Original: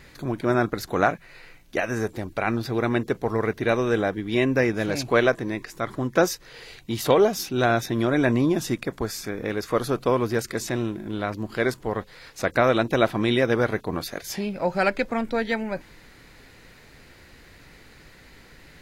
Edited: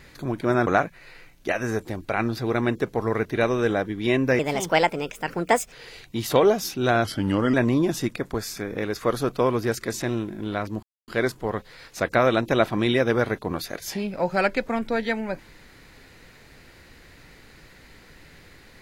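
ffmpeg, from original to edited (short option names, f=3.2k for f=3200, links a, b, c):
-filter_complex "[0:a]asplit=7[a][b][c][d][e][f][g];[a]atrim=end=0.672[h];[b]atrim=start=0.948:end=4.674[i];[c]atrim=start=4.67:end=6.47,asetpts=PTS-STARTPTS,asetrate=59535,aresample=44100[j];[d]atrim=start=6.466:end=7.794[k];[e]atrim=start=7.79:end=8.21,asetpts=PTS-STARTPTS,asetrate=37485,aresample=44100[l];[f]atrim=start=8.206:end=11.5,asetpts=PTS-STARTPTS,afade=t=out:st=3.29:d=0.004:c=hsin,apad=pad_dur=0.25[m];[g]atrim=start=11.5,asetpts=PTS-STARTPTS,afade=t=in:d=0.004:c=hsin[n];[h][i]acrossfade=d=0.004:c1=hsin:c2=hsin[o];[o][j]acrossfade=d=0.004:c1=hsin:c2=hsin[p];[p][k]acrossfade=d=0.004:c1=hsin:c2=hsin[q];[q][l]acrossfade=d=0.004:c1=hsin:c2=hsin[r];[m][n]concat=n=2:v=0:a=1[s];[r][s]acrossfade=d=0.004:c1=hsin:c2=hsin"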